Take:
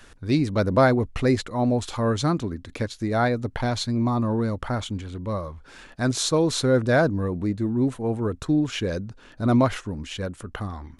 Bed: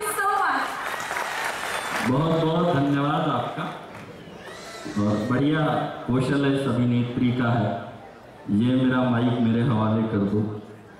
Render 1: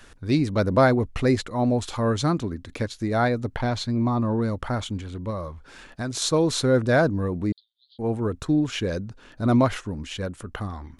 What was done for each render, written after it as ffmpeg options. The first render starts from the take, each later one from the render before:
-filter_complex "[0:a]asettb=1/sr,asplit=3[s0][s1][s2];[s0]atrim=end=3.564[s3];[s1]atrim=start=3.56:end=4.42,asetpts=PTS-STARTPTS,afade=t=in:d=0.004:c=qsin,afade=t=out:st=0.856:d=0.004:c=qsin,highshelf=f=6600:g=-9.5[s4];[s2]atrim=start=4.416[s5];[s3][s4]acrossfade=d=0.004:c1=hsin:c2=qsin[s6];[s6][s5]acrossfade=d=0.004:c1=qsin:c2=hsin,asettb=1/sr,asplit=3[s7][s8][s9];[s7]atrim=end=5.304[s10];[s8]atrim=start=5.3:end=6.22,asetpts=PTS-STARTPTS,afade=t=in:d=0.004:c=qsin,afade=t=out:st=0.916:d=0.004:c=qsin,acompressor=threshold=0.0562:ratio=6:attack=3.2:release=140:knee=1:detection=peak[s11];[s9]atrim=start=6.216[s12];[s10][s11]acrossfade=d=0.004:c1=hsin:c2=qsin[s13];[s13][s12]acrossfade=d=0.004:c1=qsin:c2=hsin,asettb=1/sr,asplit=3[s14][s15][s16];[s14]atrim=end=7.524[s17];[s15]atrim=start=7.52:end=7.99,asetpts=PTS-STARTPTS,afade=t=in:d=0.004:c=qsin,afade=t=out:st=0.466:d=0.004:c=qsin,asuperpass=centerf=3900:order=12:qfactor=2.4[s18];[s16]atrim=start=7.986[s19];[s17][s18]acrossfade=d=0.004:c1=hsin:c2=qsin[s20];[s20][s19]acrossfade=d=0.004:c1=qsin:c2=hsin"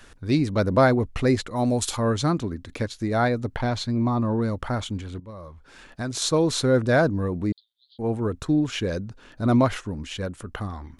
-filter_complex "[0:a]asplit=3[s0][s1][s2];[s0]afade=t=out:st=1.55:d=0.02[s3];[s1]aemphasis=mode=production:type=75fm,afade=t=in:st=1.55:d=0.02,afade=t=out:st=1.95:d=0.02[s4];[s2]afade=t=in:st=1.95:d=0.02[s5];[s3][s4][s5]amix=inputs=3:normalize=0,asplit=2[s6][s7];[s6]atrim=end=5.2,asetpts=PTS-STARTPTS,afade=t=out:st=5.196:d=0.004:c=hsin:silence=0.188365[s8];[s7]atrim=start=5.2,asetpts=PTS-STARTPTS,afade=t=in:d=0.84:silence=0.188365[s9];[s8][s9]concat=n=2:v=0:a=1"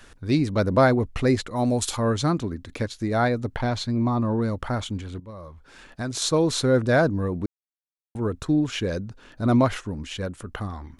-filter_complex "[0:a]asplit=3[s0][s1][s2];[s0]atrim=end=7.46,asetpts=PTS-STARTPTS,afade=t=out:st=7.456:d=0.004:c=hsin[s3];[s1]atrim=start=7.46:end=8.15,asetpts=PTS-STARTPTS,volume=0[s4];[s2]atrim=start=8.15,asetpts=PTS-STARTPTS,afade=t=in:d=0.004:c=hsin[s5];[s3][s4][s5]concat=n=3:v=0:a=1"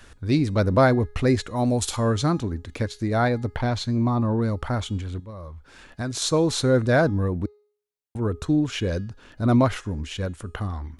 -af "equalizer=f=77:w=1.6:g=6.5,bandreject=f=416.4:t=h:w=4,bandreject=f=832.8:t=h:w=4,bandreject=f=1249.2:t=h:w=4,bandreject=f=1665.6:t=h:w=4,bandreject=f=2082:t=h:w=4,bandreject=f=2498.4:t=h:w=4,bandreject=f=2914.8:t=h:w=4,bandreject=f=3331.2:t=h:w=4,bandreject=f=3747.6:t=h:w=4,bandreject=f=4164:t=h:w=4,bandreject=f=4580.4:t=h:w=4,bandreject=f=4996.8:t=h:w=4,bandreject=f=5413.2:t=h:w=4,bandreject=f=5829.6:t=h:w=4,bandreject=f=6246:t=h:w=4,bandreject=f=6662.4:t=h:w=4,bandreject=f=7078.8:t=h:w=4,bandreject=f=7495.2:t=h:w=4,bandreject=f=7911.6:t=h:w=4,bandreject=f=8328:t=h:w=4,bandreject=f=8744.4:t=h:w=4,bandreject=f=9160.8:t=h:w=4,bandreject=f=9577.2:t=h:w=4"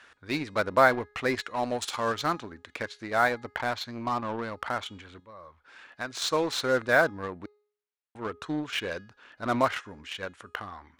-filter_complex "[0:a]bandpass=f=1700:t=q:w=0.78:csg=0,asplit=2[s0][s1];[s1]acrusher=bits=4:mix=0:aa=0.5,volume=0.447[s2];[s0][s2]amix=inputs=2:normalize=0"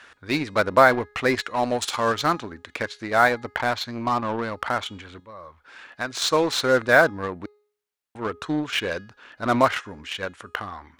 -af "volume=2,alimiter=limit=0.708:level=0:latency=1"

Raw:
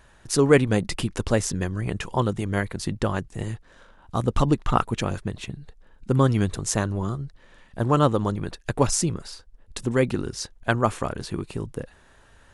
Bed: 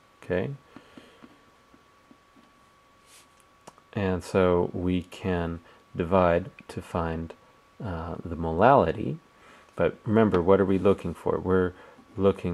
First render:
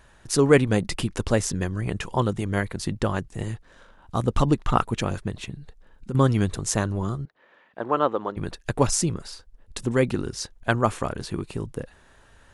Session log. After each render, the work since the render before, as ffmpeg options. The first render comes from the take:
-filter_complex "[0:a]asettb=1/sr,asplit=3[s0][s1][s2];[s0]atrim=end=5.494[s3];[s1]atrim=start=5.49:end=6.15,asetpts=PTS-STARTPTS,afade=t=in:d=0.004:c=qsin,afade=t=out:st=0.656:d=0.004:c=qsin,acompressor=threshold=0.0447:ratio=6:attack=3.2:release=140:knee=1:detection=peak[s4];[s2]atrim=start=6.146[s5];[s3][s4]acrossfade=d=0.004:c1=hsin:c2=qsin[s6];[s6][s5]acrossfade=d=0.004:c1=qsin:c2=hsin,asettb=1/sr,asplit=3[s7][s8][s9];[s7]atrim=end=7.254[s10];[s8]atrim=start=7.25:end=8.37,asetpts=PTS-STARTPTS,afade=t=in:d=0.004:c=qsin,afade=t=out:st=1.116:d=0.004:c=qsin,highpass=390,lowpass=2400[s11];[s9]atrim=start=8.366[s12];[s10][s11]acrossfade=d=0.004:c1=hsin:c2=qsin[s13];[s13][s12]acrossfade=d=0.004:c1=qsin:c2=hsin"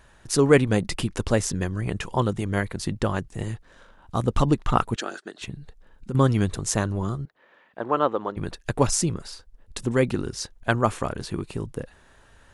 -filter_complex "[0:a]asettb=1/sr,asplit=3[s0][s1][s2];[s0]atrim=end=4.964[s3];[s1]atrim=start=4.96:end=5.42,asetpts=PTS-STARTPTS,afade=t=in:d=0.004:c=qsin,afade=t=out:st=0.456:d=0.004:c=qsin,highpass=f=320:w=0.5412,highpass=f=320:w=1.3066,equalizer=f=510:t=q:w=4:g=-8,equalizer=f=1000:t=q:w=4:g=-10,equalizer=f=1500:t=q:w=4:g=7,equalizer=f=2300:t=q:w=4:g=-8,equalizer=f=4400:t=q:w=4:g=3,lowpass=f=8900:w=0.5412,lowpass=f=8900:w=1.3066[s4];[s2]atrim=start=5.416[s5];[s3][s4]acrossfade=d=0.004:c1=hsin:c2=qsin[s6];[s6][s5]acrossfade=d=0.004:c1=qsin:c2=hsin"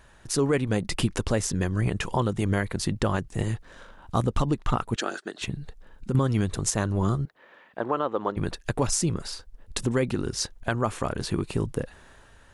-af "dynaudnorm=f=100:g=11:m=1.78,alimiter=limit=0.224:level=0:latency=1:release=258"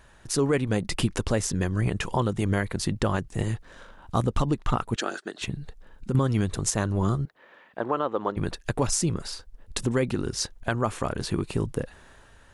-af anull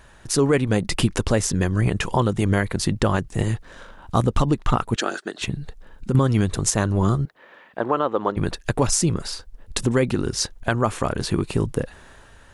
-af "volume=1.78"

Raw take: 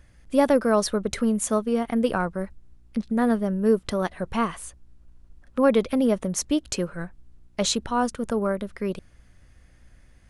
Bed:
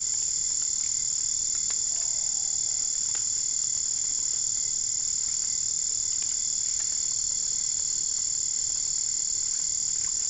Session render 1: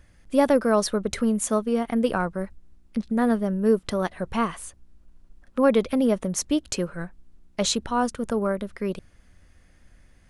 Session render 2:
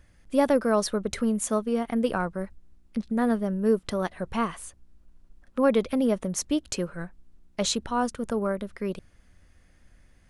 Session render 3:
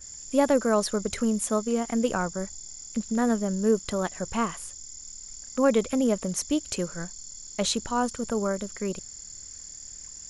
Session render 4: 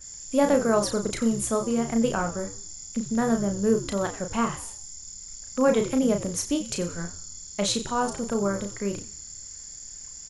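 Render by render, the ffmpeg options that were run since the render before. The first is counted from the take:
-af "bandreject=f=60:t=h:w=4,bandreject=f=120:t=h:w=4"
-af "volume=0.75"
-filter_complex "[1:a]volume=0.178[s0];[0:a][s0]amix=inputs=2:normalize=0"
-filter_complex "[0:a]asplit=2[s0][s1];[s1]adelay=35,volume=0.501[s2];[s0][s2]amix=inputs=2:normalize=0,asplit=5[s3][s4][s5][s6][s7];[s4]adelay=90,afreqshift=-84,volume=0.178[s8];[s5]adelay=180,afreqshift=-168,volume=0.0692[s9];[s6]adelay=270,afreqshift=-252,volume=0.0269[s10];[s7]adelay=360,afreqshift=-336,volume=0.0106[s11];[s3][s8][s9][s10][s11]amix=inputs=5:normalize=0"

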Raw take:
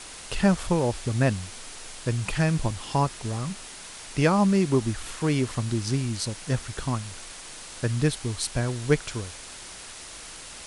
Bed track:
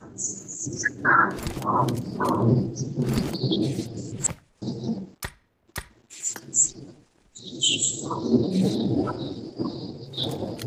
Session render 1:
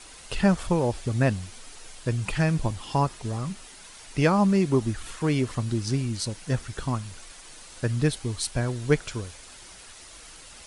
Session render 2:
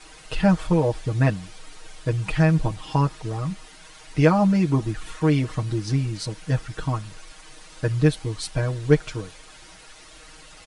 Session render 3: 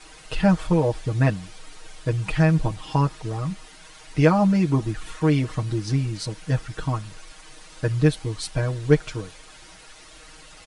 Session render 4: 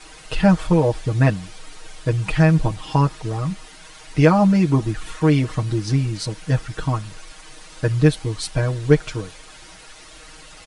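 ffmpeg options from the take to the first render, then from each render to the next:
-af "afftdn=nr=7:nf=-42"
-af "highshelf=f=6600:g=-11,aecho=1:1:6.4:0.91"
-af anull
-af "volume=1.5,alimiter=limit=0.891:level=0:latency=1"

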